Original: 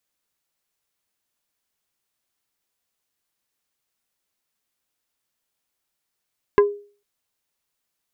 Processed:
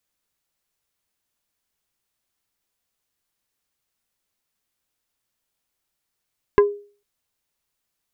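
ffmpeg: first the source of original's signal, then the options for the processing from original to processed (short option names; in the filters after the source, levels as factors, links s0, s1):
-f lavfi -i "aevalsrc='0.398*pow(10,-3*t/0.4)*sin(2*PI*409*t)+0.2*pow(10,-3*t/0.133)*sin(2*PI*1022.5*t)+0.1*pow(10,-3*t/0.076)*sin(2*PI*1636*t)+0.0501*pow(10,-3*t/0.058)*sin(2*PI*2045*t)+0.0251*pow(10,-3*t/0.042)*sin(2*PI*2658.5*t)':d=0.45:s=44100"
-af "lowshelf=f=120:g=6.5"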